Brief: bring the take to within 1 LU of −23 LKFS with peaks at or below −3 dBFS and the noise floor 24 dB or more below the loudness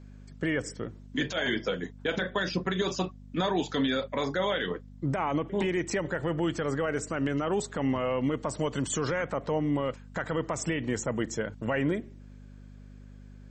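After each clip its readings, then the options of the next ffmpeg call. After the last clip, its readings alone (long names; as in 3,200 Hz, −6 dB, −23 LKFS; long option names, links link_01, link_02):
mains hum 50 Hz; hum harmonics up to 250 Hz; level of the hum −46 dBFS; integrated loudness −30.5 LKFS; sample peak −17.5 dBFS; target loudness −23.0 LKFS
→ -af "bandreject=frequency=50:width_type=h:width=4,bandreject=frequency=100:width_type=h:width=4,bandreject=frequency=150:width_type=h:width=4,bandreject=frequency=200:width_type=h:width=4,bandreject=frequency=250:width_type=h:width=4"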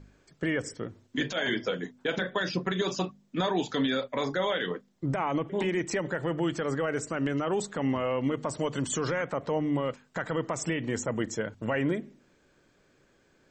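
mains hum none found; integrated loudness −30.5 LKFS; sample peak −17.5 dBFS; target loudness −23.0 LKFS
→ -af "volume=7.5dB"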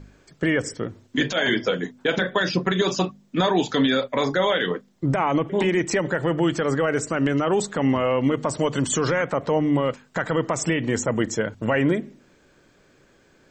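integrated loudness −23.0 LKFS; sample peak −10.0 dBFS; background noise floor −58 dBFS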